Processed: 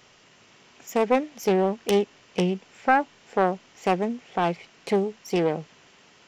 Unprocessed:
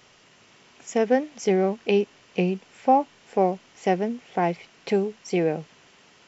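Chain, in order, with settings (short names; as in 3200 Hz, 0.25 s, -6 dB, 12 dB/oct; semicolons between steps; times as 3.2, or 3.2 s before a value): self-modulated delay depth 0.31 ms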